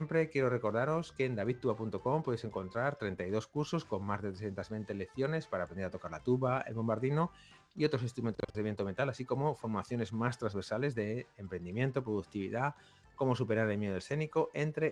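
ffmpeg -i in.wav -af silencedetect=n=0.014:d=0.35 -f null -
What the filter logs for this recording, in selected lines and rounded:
silence_start: 7.26
silence_end: 7.78 | silence_duration: 0.52
silence_start: 12.70
silence_end: 13.19 | silence_duration: 0.49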